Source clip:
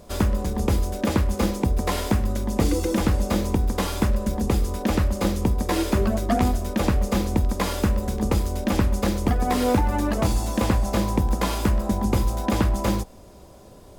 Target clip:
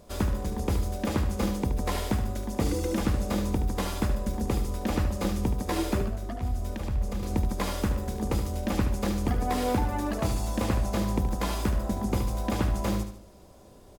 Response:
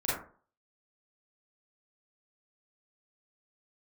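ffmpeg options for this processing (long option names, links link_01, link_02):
-filter_complex "[0:a]asettb=1/sr,asplit=3[link_01][link_02][link_03];[link_01]atrim=end=6.014[link_04];[link_02]atrim=start=6.01:end=7.23,asetpts=PTS-STARTPTS,afade=type=in:duration=0.004:curve=qsin,afade=type=out:start_time=1.216:duration=0.004:curve=qsin,acrossover=split=130[link_05][link_06];[link_06]acompressor=threshold=-30dB:ratio=10[link_07];[link_05][link_07]amix=inputs=2:normalize=0[link_08];[link_03]atrim=start=7.226[link_09];[link_04][link_08]acrossfade=duration=0.004:curve1=hsin:curve2=qsin[link_10];[link_10][link_09]acrossfade=duration=0.004:curve1=qsin:curve2=hsin,asplit=2[link_11][link_12];[link_12]aecho=0:1:74|148|222|296:0.355|0.142|0.0568|0.0227[link_13];[link_11][link_13]amix=inputs=2:normalize=0,volume=-6dB"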